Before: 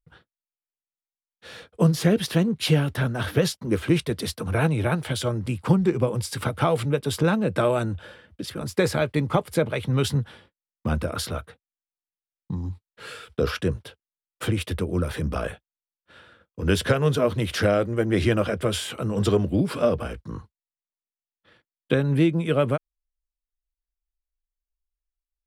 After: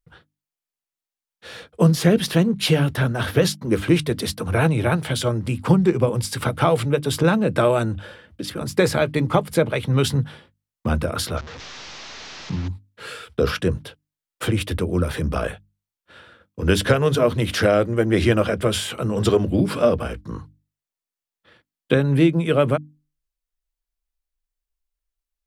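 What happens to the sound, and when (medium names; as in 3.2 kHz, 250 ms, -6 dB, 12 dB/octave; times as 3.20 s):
11.37–12.68 s: one-bit delta coder 32 kbps, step -35 dBFS
whole clip: hum notches 50/100/150/200/250/300 Hz; trim +4 dB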